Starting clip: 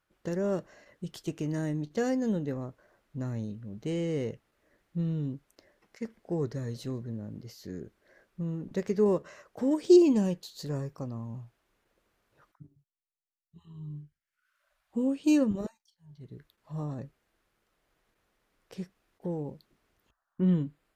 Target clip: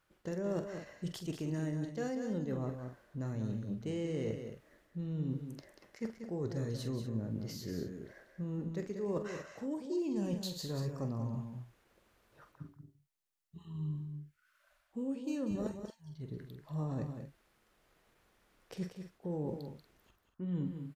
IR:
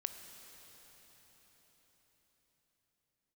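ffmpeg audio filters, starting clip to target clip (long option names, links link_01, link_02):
-af "areverse,acompressor=threshold=-37dB:ratio=20,areverse,aecho=1:1:45|187|235:0.335|0.398|0.224,volume=3dB"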